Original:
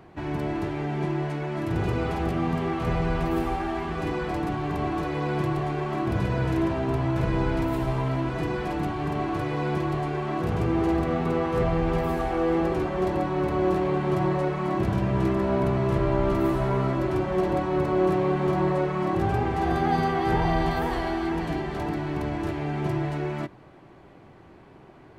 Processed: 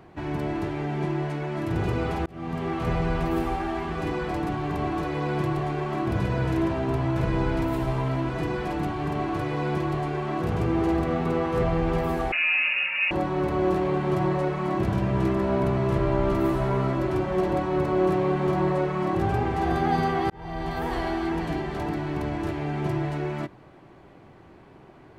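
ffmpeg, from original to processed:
ffmpeg -i in.wav -filter_complex "[0:a]asettb=1/sr,asplit=3[link_01][link_02][link_03];[link_01]atrim=end=12.324[link_04];[link_02]atrim=start=12.32:end=13.11,asetpts=PTS-STARTPTS,afade=type=in:duration=0.004:curve=qsin,afade=type=out:start_time=0.786:duration=0.004:curve=qsin,lowpass=frequency=2500:width_type=q:width=0.5098,lowpass=frequency=2500:width_type=q:width=0.6013,lowpass=frequency=2500:width_type=q:width=0.9,lowpass=frequency=2500:width_type=q:width=2.563,afreqshift=-2900[link_05];[link_03]atrim=start=13.106[link_06];[link_04][link_05]acrossfade=duration=0.004:curve1=hsin:curve2=qsin[link_07];[link_07][link_06]acrossfade=duration=0.004:curve1=qsin:curve2=hsin,asplit=3[link_08][link_09][link_10];[link_08]atrim=end=2.26,asetpts=PTS-STARTPTS,afade=type=out:start_time=2.256:duration=0.004:curve=hsin[link_11];[link_09]atrim=start=2.26:end=20.3,asetpts=PTS-STARTPTS,afade=type=in:duration=0.65:curve=qsin,afade=type=out:start_time=18.036:duration=0.004:curve=hsin[link_12];[link_10]atrim=start=20.3,asetpts=PTS-STARTPTS,afade=type=in:duration=0.7[link_13];[link_11][link_12][link_13]concat=n=3:v=0:a=1" out.wav

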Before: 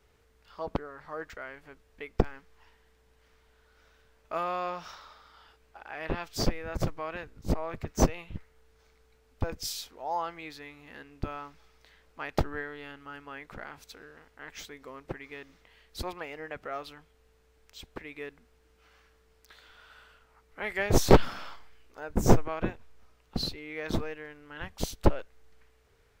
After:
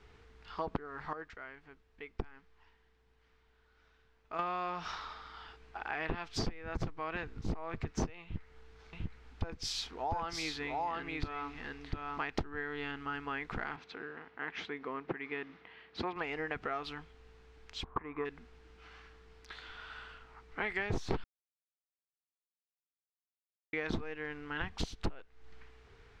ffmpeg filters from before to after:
ffmpeg -i in.wav -filter_complex "[0:a]asettb=1/sr,asplit=3[link_01][link_02][link_03];[link_01]atrim=end=8.234[link_04];[link_02]atrim=start=8.23:end=12.21,asetpts=PTS-STARTPTS,afade=type=in:duration=0.004:curve=qsin,afade=type=out:start_time=3.976:duration=0.004:curve=qsin,aecho=1:1:698:0.668,atrim=end_sample=175518[link_05];[link_03]atrim=start=12.206[link_06];[link_04][link_05]acrossfade=duration=0.004:curve1=hsin:curve2=qsin[link_07];[link_07][link_06]acrossfade=duration=0.004:curve1=qsin:curve2=hsin,asettb=1/sr,asplit=3[link_08][link_09][link_10];[link_08]atrim=end=13.764[link_11];[link_09]atrim=start=13.76:end=16.16,asetpts=PTS-STARTPTS,afade=type=in:duration=0.004:curve=qsin,afade=type=out:start_time=2.396:duration=0.004:curve=qsin,highpass=160,lowpass=2800[link_12];[link_10]atrim=start=16.156[link_13];[link_11][link_12]acrossfade=duration=0.004:curve1=hsin:curve2=qsin[link_14];[link_14][link_13]acrossfade=duration=0.004:curve1=qsin:curve2=hsin,asplit=3[link_15][link_16][link_17];[link_15]afade=type=out:start_time=17.83:duration=0.02[link_18];[link_16]lowpass=frequency=1100:width_type=q:width=8.3,afade=type=in:start_time=17.83:duration=0.02,afade=type=out:start_time=18.24:duration=0.02[link_19];[link_17]afade=type=in:start_time=18.24:duration=0.02[link_20];[link_18][link_19][link_20]amix=inputs=3:normalize=0,asplit=5[link_21][link_22][link_23][link_24][link_25];[link_21]atrim=end=1.132[link_26];[link_22]atrim=start=1.128:end=4.392,asetpts=PTS-STARTPTS,volume=-12dB[link_27];[link_23]atrim=start=4.388:end=21.24,asetpts=PTS-STARTPTS,afade=type=out:start_time=16.848:duration=0.004:curve=hsin[link_28];[link_24]atrim=start=21.24:end=23.73,asetpts=PTS-STARTPTS,volume=0[link_29];[link_25]atrim=start=23.73,asetpts=PTS-STARTPTS,afade=type=in:duration=0.004:curve=hsin[link_30];[link_26][link_27]acrossfade=duration=0.004:curve1=hsin:curve2=hsin[link_31];[link_28][link_29][link_30]concat=n=3:v=0:a=1[link_32];[link_31][link_32]acrossfade=duration=0.004:curve1=hsin:curve2=hsin,lowpass=4400,equalizer=frequency=570:width=6.5:gain=-13,acompressor=threshold=-40dB:ratio=6,volume=7dB" out.wav

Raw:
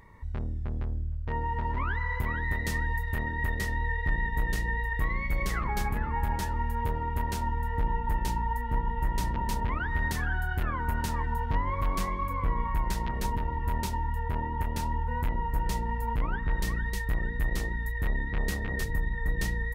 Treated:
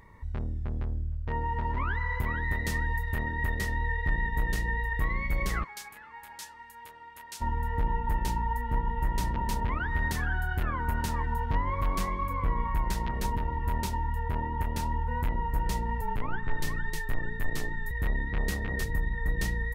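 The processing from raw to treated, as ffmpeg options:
ffmpeg -i in.wav -filter_complex "[0:a]asplit=3[link_01][link_02][link_03];[link_01]afade=type=out:start_time=5.63:duration=0.02[link_04];[link_02]bandpass=frequency=7100:width_type=q:width=0.59,afade=type=in:start_time=5.63:duration=0.02,afade=type=out:start_time=7.4:duration=0.02[link_05];[link_03]afade=type=in:start_time=7.4:duration=0.02[link_06];[link_04][link_05][link_06]amix=inputs=3:normalize=0,asettb=1/sr,asplit=3[link_07][link_08][link_09];[link_07]atrim=end=16.014[link_10];[link_08]atrim=start=16.01:end=17.91,asetpts=PTS-STARTPTS,afade=type=in:duration=0.004:curve=qsin,afade=type=out:start_time=1.896:duration=0.004:curve=qsin,afreqshift=-34[link_11];[link_09]atrim=start=17.906[link_12];[link_10][link_11]acrossfade=duration=0.004:curve1=hsin:curve2=qsin[link_13];[link_13][link_12]acrossfade=duration=0.004:curve1=qsin:curve2=hsin" out.wav

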